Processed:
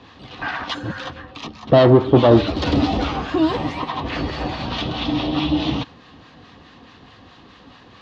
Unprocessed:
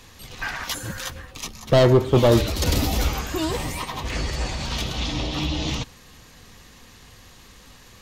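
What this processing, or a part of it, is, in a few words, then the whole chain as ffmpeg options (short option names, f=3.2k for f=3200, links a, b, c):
guitar amplifier with harmonic tremolo: -filter_complex "[0:a]acrossover=split=820[a][b];[a]aeval=exprs='val(0)*(1-0.5/2+0.5/2*cos(2*PI*4.7*n/s))':c=same[c];[b]aeval=exprs='val(0)*(1-0.5/2-0.5/2*cos(2*PI*4.7*n/s))':c=same[d];[c][d]amix=inputs=2:normalize=0,asoftclip=type=tanh:threshold=-11.5dB,highpass=92,equalizer=f=290:t=q:w=4:g=8,equalizer=f=730:t=q:w=4:g=5,equalizer=f=1.1k:t=q:w=4:g=3,equalizer=f=2.2k:t=q:w=4:g=-5,lowpass=f=3.9k:w=0.5412,lowpass=f=3.9k:w=1.3066,volume=6dB"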